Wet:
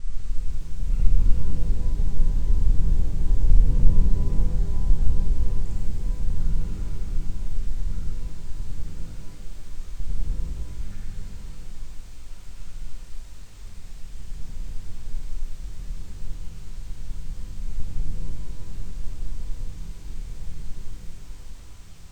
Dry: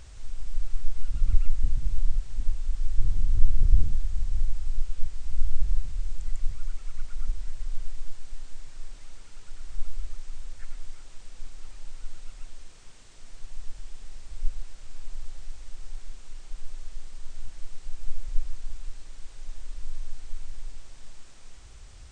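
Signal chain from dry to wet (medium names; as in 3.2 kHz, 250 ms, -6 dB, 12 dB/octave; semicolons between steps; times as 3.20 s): slices played last to first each 100 ms, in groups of 8; pitch-shifted reverb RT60 2.1 s, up +12 st, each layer -8 dB, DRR -5.5 dB; trim -5 dB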